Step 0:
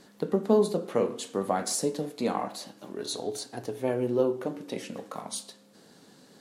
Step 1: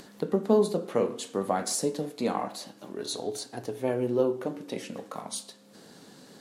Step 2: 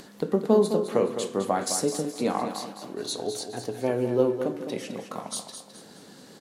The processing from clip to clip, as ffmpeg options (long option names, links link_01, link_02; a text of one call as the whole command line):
ffmpeg -i in.wav -af "acompressor=mode=upward:threshold=-44dB:ratio=2.5" out.wav
ffmpeg -i in.wav -af "aecho=1:1:210|420|630|840:0.355|0.131|0.0486|0.018,volume=2dB" out.wav